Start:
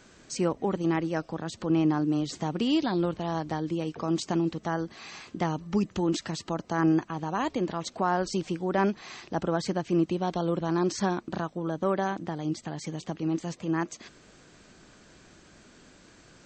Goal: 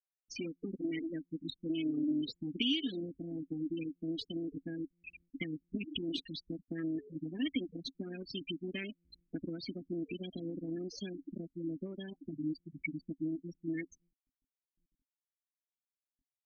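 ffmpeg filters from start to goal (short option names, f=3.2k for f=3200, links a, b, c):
-filter_complex "[0:a]lowpass=6.9k,highshelf=f=1.8k:t=q:w=1.5:g=12,asplit=8[a][b][c][d][e][f][g][h];[b]adelay=109,afreqshift=110,volume=-13.5dB[i];[c]adelay=218,afreqshift=220,volume=-17.7dB[j];[d]adelay=327,afreqshift=330,volume=-21.8dB[k];[e]adelay=436,afreqshift=440,volume=-26dB[l];[f]adelay=545,afreqshift=550,volume=-30.1dB[m];[g]adelay=654,afreqshift=660,volume=-34.3dB[n];[h]adelay=763,afreqshift=770,volume=-38.4dB[o];[a][i][j][k][l][m][n][o]amix=inputs=8:normalize=0,asubboost=boost=7:cutoff=66,bandreject=f=1.1k:w=6.1,aeval=exprs='max(val(0),0)':c=same,afftfilt=real='re*gte(hypot(re,im),0.0708)':imag='im*gte(hypot(re,im),0.0708)':win_size=1024:overlap=0.75,acompressor=threshold=-35dB:ratio=6,asplit=3[p][q][r];[p]bandpass=f=270:t=q:w=8,volume=0dB[s];[q]bandpass=f=2.29k:t=q:w=8,volume=-6dB[t];[r]bandpass=f=3.01k:t=q:w=8,volume=-9dB[u];[s][t][u]amix=inputs=3:normalize=0,volume=16.5dB"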